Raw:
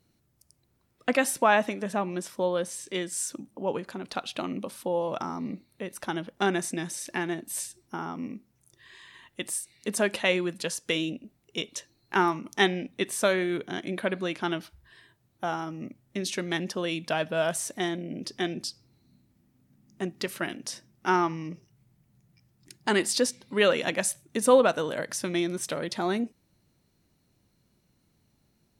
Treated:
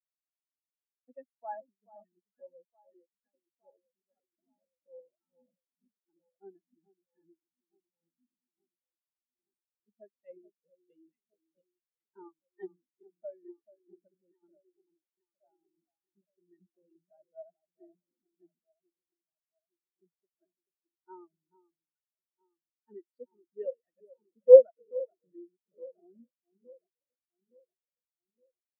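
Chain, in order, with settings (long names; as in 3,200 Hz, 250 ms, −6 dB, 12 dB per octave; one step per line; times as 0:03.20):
tape wow and flutter 17 cents
delay that swaps between a low-pass and a high-pass 433 ms, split 1,500 Hz, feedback 87%, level −5 dB
every bin expanded away from the loudest bin 4 to 1
level +4 dB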